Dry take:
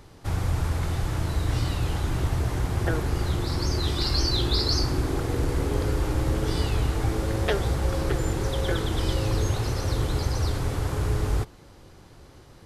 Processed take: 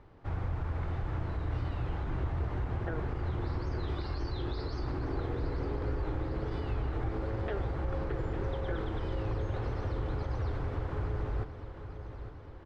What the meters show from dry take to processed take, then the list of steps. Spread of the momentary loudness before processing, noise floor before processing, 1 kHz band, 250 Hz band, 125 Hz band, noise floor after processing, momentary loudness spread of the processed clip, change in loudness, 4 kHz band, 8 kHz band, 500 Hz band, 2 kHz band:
4 LU, -49 dBFS, -7.5 dB, -8.5 dB, -8.5 dB, -46 dBFS, 2 LU, -9.5 dB, -21.5 dB, under -30 dB, -8.0 dB, -10.0 dB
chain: bell 170 Hz -3 dB 1.4 oct; limiter -19 dBFS, peak gain reduction 7.5 dB; LPF 1900 Hz 12 dB/oct; feedback echo 0.856 s, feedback 59%, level -11 dB; gain -6 dB

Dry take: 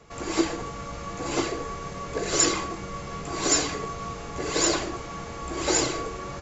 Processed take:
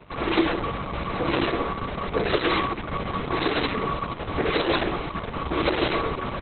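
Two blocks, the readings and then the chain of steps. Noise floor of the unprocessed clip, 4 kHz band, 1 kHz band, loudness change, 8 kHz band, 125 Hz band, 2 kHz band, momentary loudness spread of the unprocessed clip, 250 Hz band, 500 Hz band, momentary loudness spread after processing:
-38 dBFS, +0.5 dB, +5.0 dB, +1.5 dB, n/a, +5.5 dB, +5.0 dB, 13 LU, +3.5 dB, +4.0 dB, 7 LU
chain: limiter -17.5 dBFS, peak gain reduction 9 dB; gain +7 dB; Opus 6 kbps 48000 Hz

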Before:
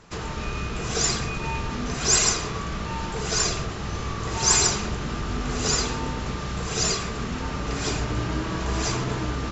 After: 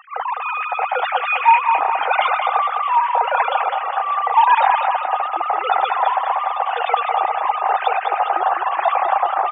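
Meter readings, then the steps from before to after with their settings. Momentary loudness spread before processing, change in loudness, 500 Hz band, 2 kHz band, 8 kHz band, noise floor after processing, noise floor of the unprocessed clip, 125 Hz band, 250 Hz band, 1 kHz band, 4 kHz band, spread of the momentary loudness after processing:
12 LU, +7.0 dB, +6.0 dB, +8.5 dB, n/a, -26 dBFS, -32 dBFS, under -40 dB, under -15 dB, +18.0 dB, -4.5 dB, 7 LU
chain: sine-wave speech; reverse; upward compressor, threshold -28 dBFS; reverse; resonant high-pass 780 Hz, resonance Q 9.3; loudest bins only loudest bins 64; feedback echo 0.204 s, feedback 47%, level -6 dB

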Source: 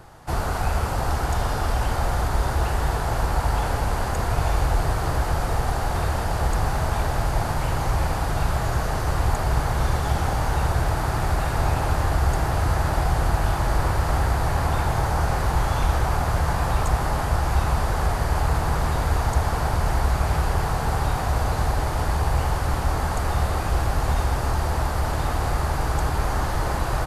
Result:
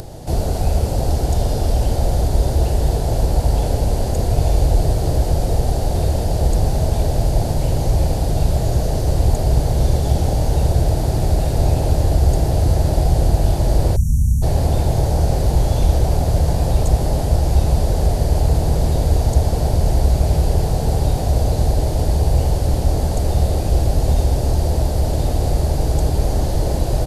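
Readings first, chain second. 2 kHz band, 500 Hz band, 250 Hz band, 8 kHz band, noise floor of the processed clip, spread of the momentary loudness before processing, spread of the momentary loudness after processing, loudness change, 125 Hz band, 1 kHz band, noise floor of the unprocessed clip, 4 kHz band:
-9.0 dB, +6.0 dB, +7.0 dB, +4.0 dB, -21 dBFS, 2 LU, 3 LU, +5.5 dB, +7.0 dB, -3.0 dB, -26 dBFS, +2.5 dB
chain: spectral delete 13.96–14.42, 240–5500 Hz; EQ curve 610 Hz 0 dB, 1200 Hz -22 dB, 4200 Hz -3 dB; upward compressor, threshold -31 dBFS; gain +7 dB

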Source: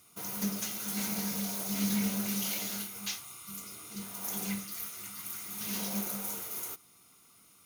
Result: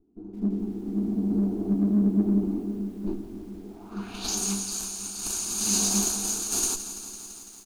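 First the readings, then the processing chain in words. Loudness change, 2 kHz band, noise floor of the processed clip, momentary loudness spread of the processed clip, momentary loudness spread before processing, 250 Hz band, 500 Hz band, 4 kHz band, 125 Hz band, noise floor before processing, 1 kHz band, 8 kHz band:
+8.0 dB, -2.5 dB, -45 dBFS, 16 LU, 11 LU, +10.5 dB, +10.0 dB, +5.5 dB, +9.5 dB, -61 dBFS, +2.5 dB, +10.5 dB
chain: minimum comb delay 0.46 ms; AGC gain up to 8 dB; fixed phaser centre 540 Hz, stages 6; low-pass sweep 330 Hz -> 7300 Hz, 3.58–4.4; random-step tremolo 2.3 Hz, depth 75%; in parallel at -6 dB: soft clip -36.5 dBFS, distortion -9 dB; on the sum: vibrato 11 Hz 9.9 cents; on a send: echo 0.235 s -22.5 dB; on the sum: lo-fi delay 0.168 s, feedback 80%, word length 10-bit, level -13 dB; gain +8.5 dB

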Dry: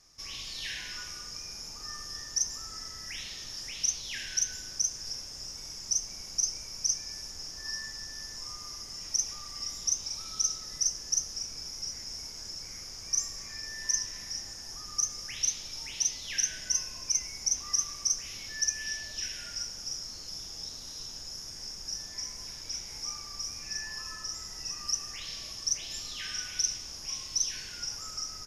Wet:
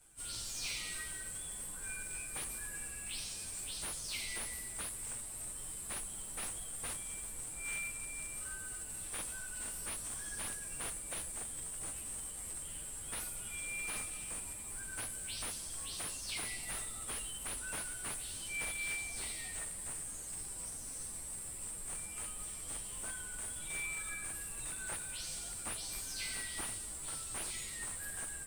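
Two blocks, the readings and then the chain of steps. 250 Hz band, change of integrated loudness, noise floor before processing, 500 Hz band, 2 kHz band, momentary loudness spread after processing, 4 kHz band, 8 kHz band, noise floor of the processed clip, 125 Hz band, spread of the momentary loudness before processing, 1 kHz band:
+0.5 dB, -7.0 dB, -44 dBFS, +2.0 dB, -0.5 dB, 4 LU, -12.5 dB, -7.5 dB, -45 dBFS, -0.5 dB, 10 LU, -1.0 dB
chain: inharmonic rescaling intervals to 115%; slew limiter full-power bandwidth 58 Hz; gain +3 dB

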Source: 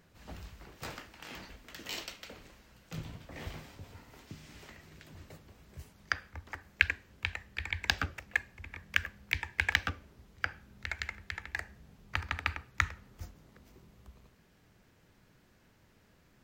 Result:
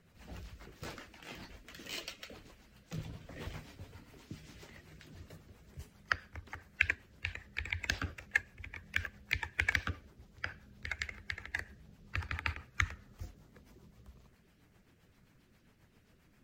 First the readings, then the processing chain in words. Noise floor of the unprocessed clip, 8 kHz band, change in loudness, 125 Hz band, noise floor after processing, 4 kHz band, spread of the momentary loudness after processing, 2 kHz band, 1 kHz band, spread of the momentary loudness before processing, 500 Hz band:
-65 dBFS, -2.5 dB, -3.0 dB, -0.5 dB, -67 dBFS, -5.0 dB, 21 LU, -2.5 dB, -4.0 dB, 22 LU, -2.0 dB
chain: bin magnitudes rounded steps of 15 dB; rotary speaker horn 7.5 Hz; gain +1 dB

